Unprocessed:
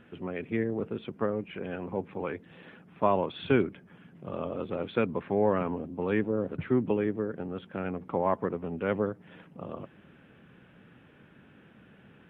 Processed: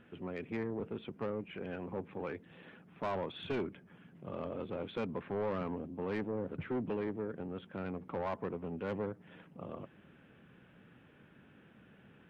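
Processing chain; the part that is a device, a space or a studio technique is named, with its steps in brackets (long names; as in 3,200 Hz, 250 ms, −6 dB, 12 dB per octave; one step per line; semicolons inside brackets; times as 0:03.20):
saturation between pre-emphasis and de-emphasis (high-shelf EQ 3,100 Hz +9 dB; soft clipping −25.5 dBFS, distortion −8 dB; high-shelf EQ 3,100 Hz −9 dB)
level −4.5 dB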